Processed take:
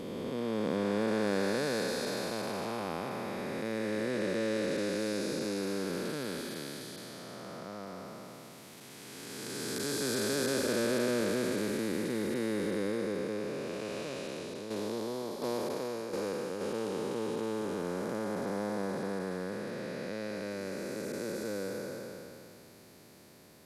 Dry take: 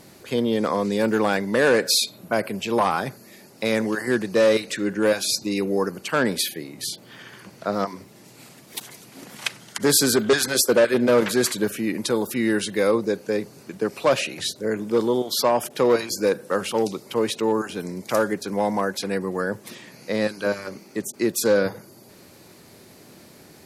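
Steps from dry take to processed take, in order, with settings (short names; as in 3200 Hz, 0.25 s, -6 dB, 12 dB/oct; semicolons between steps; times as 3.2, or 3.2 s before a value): time blur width 0.99 s; 13.99–16.61 tremolo saw down 1.4 Hz, depth 55%; gain -6 dB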